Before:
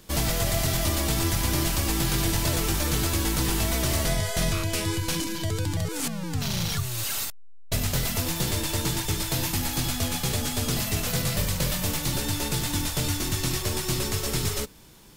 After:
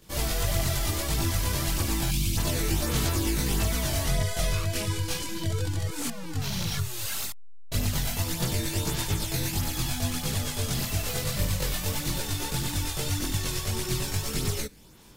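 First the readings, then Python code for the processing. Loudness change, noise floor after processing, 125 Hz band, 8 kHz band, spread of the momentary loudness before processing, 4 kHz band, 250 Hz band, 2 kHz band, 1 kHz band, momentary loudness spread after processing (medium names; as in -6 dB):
-2.5 dB, -36 dBFS, -1.0 dB, -3.0 dB, 4 LU, -3.0 dB, -3.0 dB, -3.0 dB, -3.0 dB, 4 LU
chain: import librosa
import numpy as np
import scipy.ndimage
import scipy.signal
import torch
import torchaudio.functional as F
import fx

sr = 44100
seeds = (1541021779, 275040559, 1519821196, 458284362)

y = fx.chorus_voices(x, sr, voices=2, hz=0.83, base_ms=21, depth_ms=1.4, mix_pct=60)
y = fx.spec_box(y, sr, start_s=2.11, length_s=0.26, low_hz=340.0, high_hz=2100.0, gain_db=-15)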